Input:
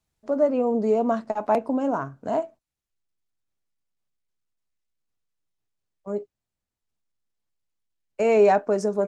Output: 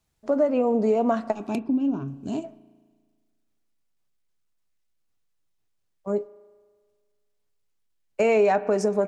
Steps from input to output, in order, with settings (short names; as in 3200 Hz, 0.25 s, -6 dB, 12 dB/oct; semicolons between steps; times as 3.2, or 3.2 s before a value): 1.33–2.44 spectral gain 410–2300 Hz -18 dB; dynamic EQ 2500 Hz, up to +4 dB, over -40 dBFS, Q 1.2; spring tank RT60 1.6 s, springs 36 ms, chirp 75 ms, DRR 19 dB; compressor 3:1, threshold -23 dBFS, peak gain reduction 8 dB; 1.59–2.08 air absorption 210 m; gain +4 dB